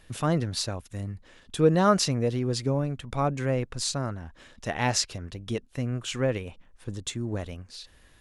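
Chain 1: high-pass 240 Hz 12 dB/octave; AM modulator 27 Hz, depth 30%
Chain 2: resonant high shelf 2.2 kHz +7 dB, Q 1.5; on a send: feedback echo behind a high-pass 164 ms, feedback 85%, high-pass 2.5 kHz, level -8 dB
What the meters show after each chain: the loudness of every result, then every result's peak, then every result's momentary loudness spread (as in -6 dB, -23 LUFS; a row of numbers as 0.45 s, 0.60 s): -31.5 LUFS, -25.0 LUFS; -7.5 dBFS, -1.0 dBFS; 20 LU, 13 LU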